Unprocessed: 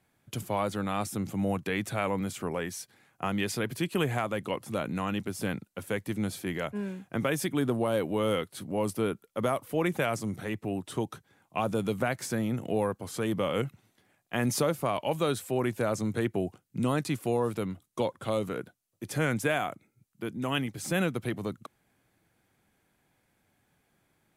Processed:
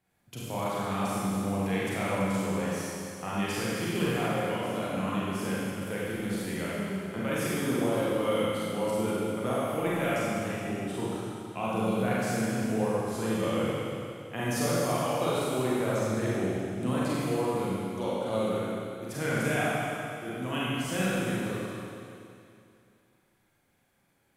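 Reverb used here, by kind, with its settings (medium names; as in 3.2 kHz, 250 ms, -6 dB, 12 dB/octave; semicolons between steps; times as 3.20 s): Schroeder reverb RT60 2.6 s, combs from 32 ms, DRR -8 dB; trim -7.5 dB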